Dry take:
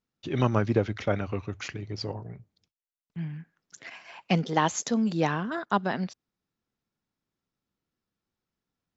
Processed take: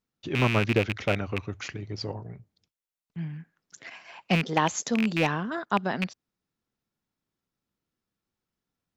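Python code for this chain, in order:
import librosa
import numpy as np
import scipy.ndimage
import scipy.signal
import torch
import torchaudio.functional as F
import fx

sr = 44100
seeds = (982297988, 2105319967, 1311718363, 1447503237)

y = fx.rattle_buzz(x, sr, strikes_db=-27.0, level_db=-16.0)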